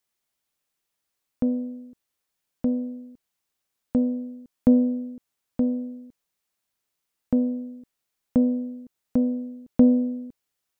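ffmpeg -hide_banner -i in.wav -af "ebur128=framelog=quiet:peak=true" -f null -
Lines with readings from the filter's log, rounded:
Integrated loudness:
  I:         -25.0 LUFS
  Threshold: -36.4 LUFS
Loudness range:
  LRA:         7.4 LU
  Threshold: -48.0 LUFS
  LRA low:   -32.7 LUFS
  LRA high:  -25.3 LUFS
True peak:
  Peak:       -7.3 dBFS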